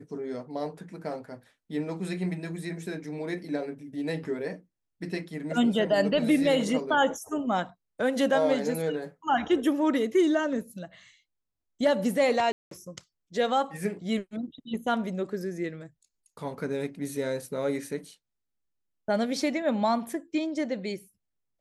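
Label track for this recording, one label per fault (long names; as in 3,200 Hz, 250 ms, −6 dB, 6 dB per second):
12.520000	12.710000	drop-out 193 ms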